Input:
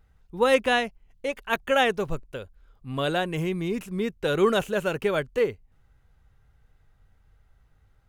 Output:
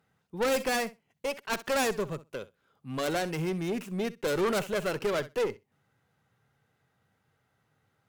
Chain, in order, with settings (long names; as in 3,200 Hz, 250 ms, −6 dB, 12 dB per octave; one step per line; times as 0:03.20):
stylus tracing distortion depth 0.44 ms
high-pass filter 130 Hz 24 dB per octave
on a send: flutter between parallel walls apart 11 metres, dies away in 0.2 s
on the sum: tube saturation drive 23 dB, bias 0.4